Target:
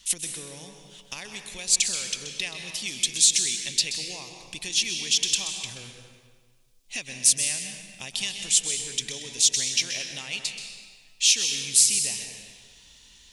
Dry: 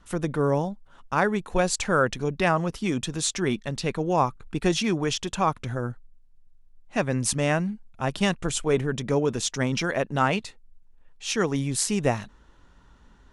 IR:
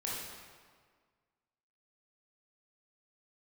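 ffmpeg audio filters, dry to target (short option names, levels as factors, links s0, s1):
-filter_complex "[0:a]acompressor=threshold=0.02:ratio=6,aexciter=amount=14.9:drive=7.2:freq=2200,asplit=2[s0][s1];[1:a]atrim=start_sample=2205,adelay=129[s2];[s1][s2]afir=irnorm=-1:irlink=0,volume=0.422[s3];[s0][s3]amix=inputs=2:normalize=0,volume=0.355"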